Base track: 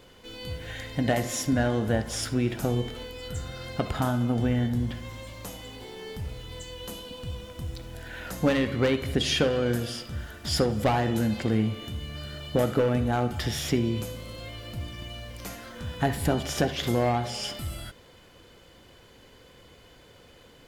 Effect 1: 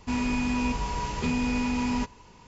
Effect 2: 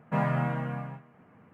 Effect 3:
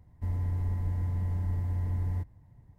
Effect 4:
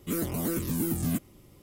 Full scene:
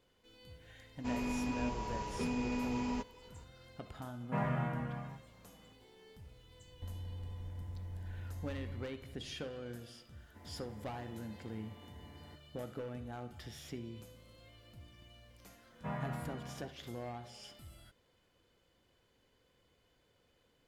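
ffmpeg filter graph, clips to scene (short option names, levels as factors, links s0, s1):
-filter_complex "[2:a]asplit=2[s0][s1];[3:a]asplit=2[s2][s3];[0:a]volume=0.106[s4];[1:a]equalizer=f=490:t=o:w=1.5:g=8[s5];[s2]acrossover=split=120|270[s6][s7][s8];[s6]acompressor=threshold=0.00891:ratio=4[s9];[s7]acompressor=threshold=0.002:ratio=4[s10];[s8]acompressor=threshold=0.00126:ratio=4[s11];[s9][s10][s11]amix=inputs=3:normalize=0[s12];[s3]highpass=290[s13];[s5]atrim=end=2.47,asetpts=PTS-STARTPTS,volume=0.251,afade=t=in:d=0.004:c=hsin,afade=t=out:st=2.466:d=0.004:c=hsin,adelay=970[s14];[s0]atrim=end=1.53,asetpts=PTS-STARTPTS,volume=0.422,afade=t=in:d=0.004:c=hsin,afade=t=out:st=1.526:d=0.004:c=hsin,adelay=4200[s15];[s12]atrim=end=2.78,asetpts=PTS-STARTPTS,volume=0.631,afade=t=in:d=0.004:c=hsin,afade=t=out:st=2.776:d=0.004:c=hsin,adelay=6600[s16];[s13]atrim=end=2.78,asetpts=PTS-STARTPTS,volume=0.376,afade=t=in:d=0.004:c=hsin,afade=t=out:st=2.776:d=0.004:c=hsin,adelay=10130[s17];[s1]atrim=end=1.53,asetpts=PTS-STARTPTS,volume=0.224,afade=t=in:d=0.004:c=hsin,afade=t=out:st=1.526:d=0.004:c=hsin,adelay=693252S[s18];[s4][s14][s15][s16][s17][s18]amix=inputs=6:normalize=0"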